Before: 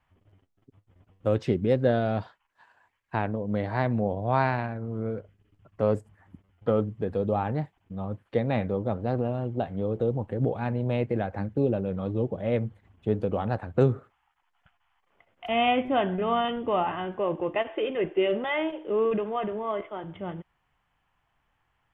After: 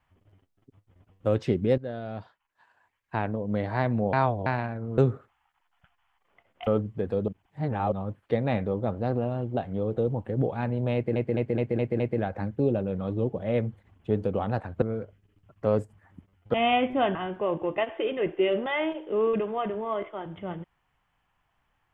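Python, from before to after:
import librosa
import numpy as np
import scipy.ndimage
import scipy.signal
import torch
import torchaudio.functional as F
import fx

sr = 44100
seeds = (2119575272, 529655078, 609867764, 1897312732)

y = fx.edit(x, sr, fx.fade_in_from(start_s=1.78, length_s=1.6, floor_db=-14.5),
    fx.reverse_span(start_s=4.13, length_s=0.33),
    fx.swap(start_s=4.98, length_s=1.72, other_s=13.8, other_length_s=1.69),
    fx.reverse_span(start_s=7.31, length_s=0.64),
    fx.stutter(start_s=10.98, slice_s=0.21, count=6),
    fx.cut(start_s=16.1, length_s=0.83), tone=tone)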